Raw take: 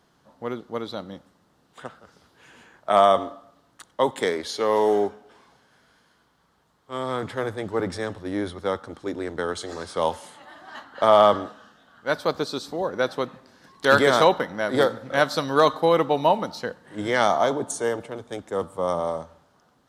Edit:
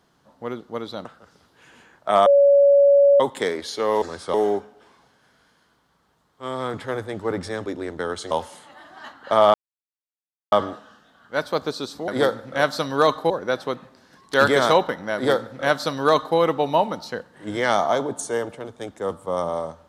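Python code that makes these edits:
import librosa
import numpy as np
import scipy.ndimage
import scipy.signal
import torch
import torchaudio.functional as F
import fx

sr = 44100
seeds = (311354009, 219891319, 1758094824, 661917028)

y = fx.edit(x, sr, fx.cut(start_s=1.05, length_s=0.81),
    fx.bleep(start_s=3.07, length_s=0.94, hz=564.0, db=-10.5),
    fx.cut(start_s=8.15, length_s=0.9),
    fx.move(start_s=9.7, length_s=0.32, to_s=4.83),
    fx.insert_silence(at_s=11.25, length_s=0.98),
    fx.duplicate(start_s=14.66, length_s=1.22, to_s=12.81), tone=tone)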